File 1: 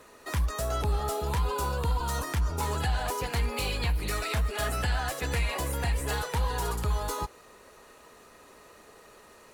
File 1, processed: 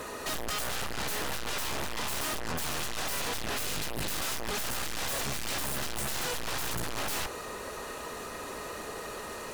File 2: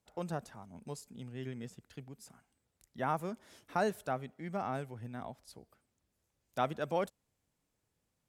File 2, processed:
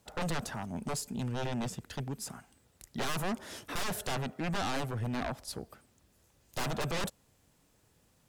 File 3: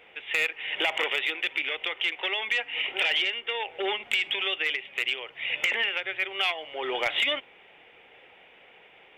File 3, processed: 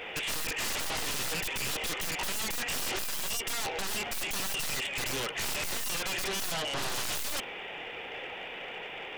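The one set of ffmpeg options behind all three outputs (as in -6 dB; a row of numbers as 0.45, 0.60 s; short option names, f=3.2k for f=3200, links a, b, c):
-af "aeval=exprs='(tanh(44.7*val(0)+0.45)-tanh(0.45))/44.7':c=same,aeval=exprs='0.0335*sin(PI/2*3.98*val(0)/0.0335)':c=same,bandreject=f=2.2k:w=23"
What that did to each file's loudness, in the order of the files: -3.0, +2.5, -5.5 LU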